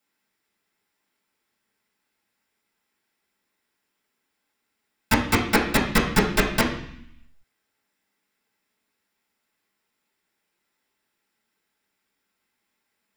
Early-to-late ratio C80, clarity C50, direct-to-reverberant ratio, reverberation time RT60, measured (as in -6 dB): 10.0 dB, 6.5 dB, -7.5 dB, 0.60 s